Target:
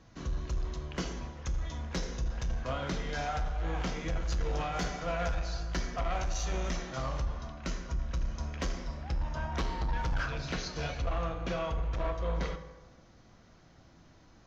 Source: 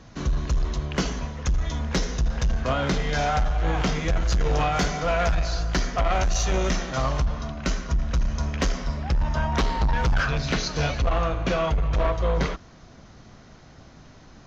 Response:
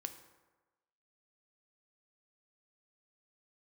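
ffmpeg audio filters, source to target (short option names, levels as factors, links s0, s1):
-filter_complex "[1:a]atrim=start_sample=2205[s0];[0:a][s0]afir=irnorm=-1:irlink=0,volume=0.422"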